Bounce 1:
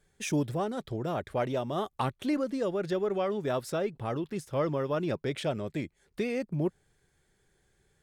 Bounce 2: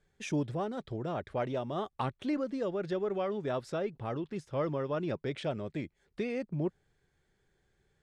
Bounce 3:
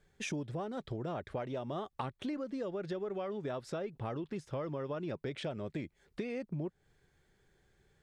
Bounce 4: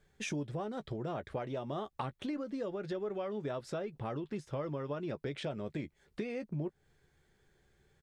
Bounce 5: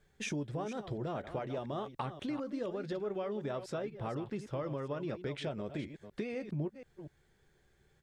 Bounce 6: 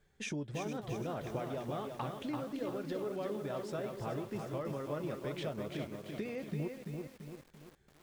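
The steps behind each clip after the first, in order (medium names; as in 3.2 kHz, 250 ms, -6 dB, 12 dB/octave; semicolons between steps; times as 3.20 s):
distance through air 79 m; trim -3 dB
compression, threshold -39 dBFS, peak gain reduction 11.5 dB; trim +3.5 dB
doubling 14 ms -12 dB
chunks repeated in reverse 244 ms, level -11 dB
bit-crushed delay 338 ms, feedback 55%, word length 9-bit, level -4.5 dB; trim -2 dB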